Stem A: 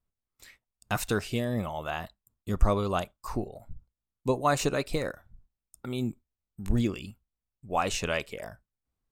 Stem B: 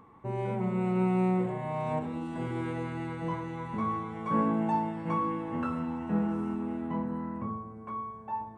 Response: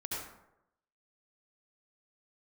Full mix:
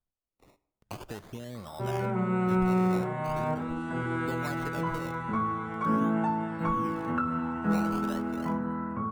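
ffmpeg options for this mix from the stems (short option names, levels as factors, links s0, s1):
-filter_complex "[0:a]acrusher=samples=19:mix=1:aa=0.000001:lfo=1:lforange=19:lforate=0.43,acompressor=threshold=0.0355:ratio=5,volume=0.422,asplit=2[s0][s1];[s1]volume=0.0891[s2];[1:a]equalizer=f=1400:t=o:w=0.33:g=14.5,adelay=1550,volume=1.19[s3];[2:a]atrim=start_sample=2205[s4];[s2][s4]afir=irnorm=-1:irlink=0[s5];[s0][s3][s5]amix=inputs=3:normalize=0,acrossover=split=390[s6][s7];[s7]acompressor=threshold=0.0398:ratio=6[s8];[s6][s8]amix=inputs=2:normalize=0"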